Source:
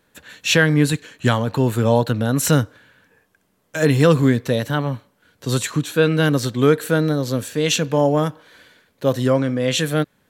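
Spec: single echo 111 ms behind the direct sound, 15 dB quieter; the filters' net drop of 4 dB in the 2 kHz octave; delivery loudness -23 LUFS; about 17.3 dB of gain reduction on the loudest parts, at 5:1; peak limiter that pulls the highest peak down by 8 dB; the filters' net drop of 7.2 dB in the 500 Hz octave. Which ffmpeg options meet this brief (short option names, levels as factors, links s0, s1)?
-af "equalizer=f=500:t=o:g=-8,equalizer=f=2000:t=o:g=-5,acompressor=threshold=0.0224:ratio=5,alimiter=level_in=1.5:limit=0.0631:level=0:latency=1,volume=0.668,aecho=1:1:111:0.178,volume=5.62"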